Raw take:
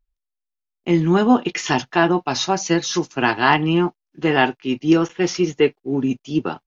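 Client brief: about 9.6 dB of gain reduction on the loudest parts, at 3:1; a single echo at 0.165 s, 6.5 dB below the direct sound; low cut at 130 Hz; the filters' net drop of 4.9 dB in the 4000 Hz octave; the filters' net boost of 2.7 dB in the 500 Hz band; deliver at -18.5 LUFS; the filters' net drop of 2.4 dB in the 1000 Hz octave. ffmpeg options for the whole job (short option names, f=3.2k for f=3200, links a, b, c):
-af "highpass=130,equalizer=f=500:t=o:g=5,equalizer=f=1k:t=o:g=-5,equalizer=f=4k:t=o:g=-7,acompressor=threshold=-21dB:ratio=3,aecho=1:1:165:0.473,volume=5.5dB"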